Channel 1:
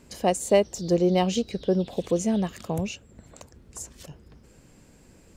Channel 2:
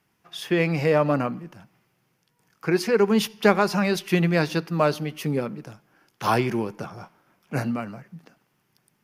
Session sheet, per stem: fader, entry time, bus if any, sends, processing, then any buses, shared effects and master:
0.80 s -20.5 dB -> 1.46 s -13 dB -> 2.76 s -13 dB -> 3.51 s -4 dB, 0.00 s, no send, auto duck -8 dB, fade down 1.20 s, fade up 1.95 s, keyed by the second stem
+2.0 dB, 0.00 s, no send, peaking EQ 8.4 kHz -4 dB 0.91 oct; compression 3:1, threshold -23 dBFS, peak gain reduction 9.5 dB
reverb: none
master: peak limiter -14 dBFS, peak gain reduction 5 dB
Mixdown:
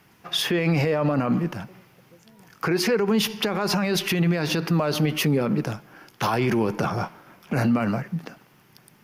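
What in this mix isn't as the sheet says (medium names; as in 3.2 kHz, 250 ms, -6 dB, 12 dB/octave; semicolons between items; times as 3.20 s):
stem 1 -20.5 dB -> -30.0 dB; stem 2 +2.0 dB -> +13.5 dB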